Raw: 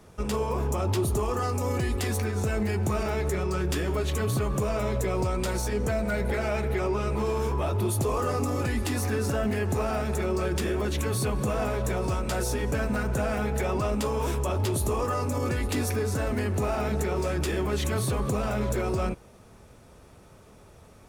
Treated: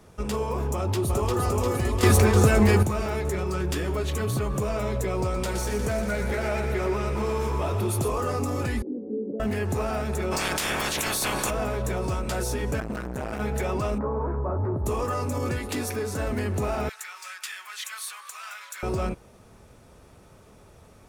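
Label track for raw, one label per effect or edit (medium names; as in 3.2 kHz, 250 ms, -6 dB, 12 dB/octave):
0.740000	1.410000	echo throw 350 ms, feedback 70%, level -2.5 dB
2.030000	2.830000	gain +9 dB
5.110000	8.110000	thinning echo 119 ms, feedback 79%, high-pass 380 Hz, level -8 dB
8.820000	9.400000	Chebyshev band-pass 200–500 Hz, order 3
10.310000	11.490000	spectral peaks clipped ceiling under each frame's peak by 28 dB
12.800000	13.400000	transformer saturation saturates under 410 Hz
13.980000	14.860000	inverse Chebyshev low-pass stop band from 2.9 kHz
15.580000	16.180000	high-pass 170 Hz 6 dB/octave
16.890000	18.830000	high-pass 1.3 kHz 24 dB/octave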